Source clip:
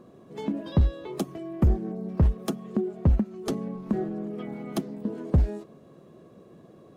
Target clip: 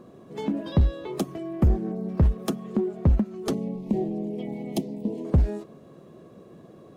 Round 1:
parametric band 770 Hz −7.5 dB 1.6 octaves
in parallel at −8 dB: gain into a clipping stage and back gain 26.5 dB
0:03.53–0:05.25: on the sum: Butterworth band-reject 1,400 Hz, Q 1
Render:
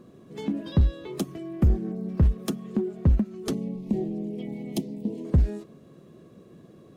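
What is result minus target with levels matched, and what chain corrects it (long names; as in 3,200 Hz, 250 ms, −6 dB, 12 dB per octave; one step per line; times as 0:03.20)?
1,000 Hz band −5.5 dB
in parallel at −8 dB: gain into a clipping stage and back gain 26.5 dB
0:03.53–0:05.25: on the sum: Butterworth band-reject 1,400 Hz, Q 1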